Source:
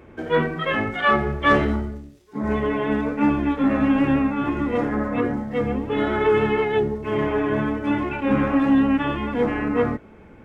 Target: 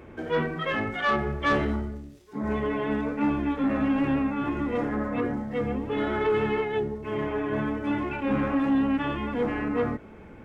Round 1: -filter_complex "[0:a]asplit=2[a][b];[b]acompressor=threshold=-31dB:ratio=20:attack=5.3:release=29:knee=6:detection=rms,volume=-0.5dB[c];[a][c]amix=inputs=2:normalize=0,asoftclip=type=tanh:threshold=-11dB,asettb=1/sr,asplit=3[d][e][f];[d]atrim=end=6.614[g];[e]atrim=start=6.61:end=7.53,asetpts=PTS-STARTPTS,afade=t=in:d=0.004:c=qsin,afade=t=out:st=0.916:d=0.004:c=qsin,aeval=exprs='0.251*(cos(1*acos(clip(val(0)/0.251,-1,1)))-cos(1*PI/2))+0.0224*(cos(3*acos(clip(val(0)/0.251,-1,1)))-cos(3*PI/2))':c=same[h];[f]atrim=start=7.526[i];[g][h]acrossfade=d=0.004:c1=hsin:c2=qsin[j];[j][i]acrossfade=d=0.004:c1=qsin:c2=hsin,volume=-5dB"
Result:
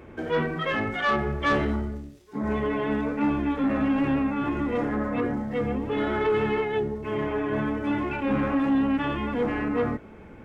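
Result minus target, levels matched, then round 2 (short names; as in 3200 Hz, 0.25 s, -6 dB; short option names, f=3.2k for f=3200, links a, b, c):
compressor: peak gain reduction -10 dB
-filter_complex "[0:a]asplit=2[a][b];[b]acompressor=threshold=-41.5dB:ratio=20:attack=5.3:release=29:knee=6:detection=rms,volume=-0.5dB[c];[a][c]amix=inputs=2:normalize=0,asoftclip=type=tanh:threshold=-11dB,asettb=1/sr,asplit=3[d][e][f];[d]atrim=end=6.614[g];[e]atrim=start=6.61:end=7.53,asetpts=PTS-STARTPTS,afade=t=in:d=0.004:c=qsin,afade=t=out:st=0.916:d=0.004:c=qsin,aeval=exprs='0.251*(cos(1*acos(clip(val(0)/0.251,-1,1)))-cos(1*PI/2))+0.0224*(cos(3*acos(clip(val(0)/0.251,-1,1)))-cos(3*PI/2))':c=same[h];[f]atrim=start=7.526[i];[g][h]acrossfade=d=0.004:c1=hsin:c2=qsin[j];[j][i]acrossfade=d=0.004:c1=qsin:c2=hsin,volume=-5dB"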